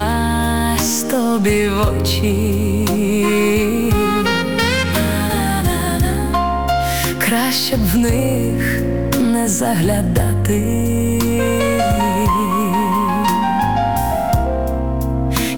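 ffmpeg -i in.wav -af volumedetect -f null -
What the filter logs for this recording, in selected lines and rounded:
mean_volume: -15.9 dB
max_volume: -6.4 dB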